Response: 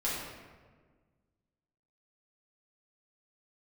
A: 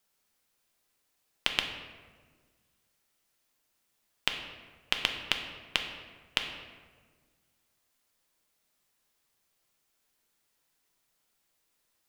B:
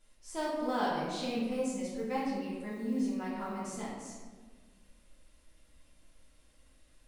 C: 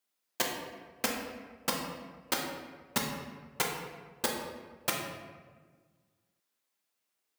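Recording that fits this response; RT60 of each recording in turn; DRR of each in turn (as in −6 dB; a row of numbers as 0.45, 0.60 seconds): B; 1.5, 1.5, 1.5 seconds; 3.5, −8.5, −1.5 decibels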